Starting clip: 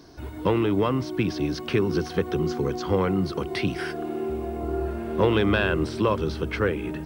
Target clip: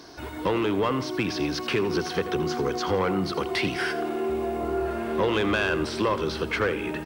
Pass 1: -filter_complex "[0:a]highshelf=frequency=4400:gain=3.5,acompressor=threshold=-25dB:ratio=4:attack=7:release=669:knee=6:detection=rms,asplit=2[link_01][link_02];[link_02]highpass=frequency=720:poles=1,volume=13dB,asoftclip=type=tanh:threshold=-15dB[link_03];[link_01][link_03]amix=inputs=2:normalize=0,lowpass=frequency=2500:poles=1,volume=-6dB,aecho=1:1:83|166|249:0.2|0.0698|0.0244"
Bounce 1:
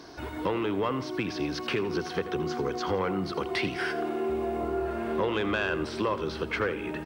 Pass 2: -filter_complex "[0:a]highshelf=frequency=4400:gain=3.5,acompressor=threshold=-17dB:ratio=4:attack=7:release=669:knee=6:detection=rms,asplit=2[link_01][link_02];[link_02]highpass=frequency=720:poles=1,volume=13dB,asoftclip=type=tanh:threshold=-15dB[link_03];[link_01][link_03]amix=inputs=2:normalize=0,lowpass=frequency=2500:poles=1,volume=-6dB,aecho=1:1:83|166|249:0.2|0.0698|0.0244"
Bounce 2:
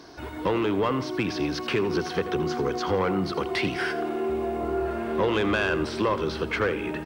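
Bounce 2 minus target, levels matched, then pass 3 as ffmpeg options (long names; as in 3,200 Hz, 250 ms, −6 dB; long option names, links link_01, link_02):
8,000 Hz band −3.5 dB
-filter_complex "[0:a]highshelf=frequency=4400:gain=9.5,acompressor=threshold=-17dB:ratio=4:attack=7:release=669:knee=6:detection=rms,asplit=2[link_01][link_02];[link_02]highpass=frequency=720:poles=1,volume=13dB,asoftclip=type=tanh:threshold=-15dB[link_03];[link_01][link_03]amix=inputs=2:normalize=0,lowpass=frequency=2500:poles=1,volume=-6dB,aecho=1:1:83|166|249:0.2|0.0698|0.0244"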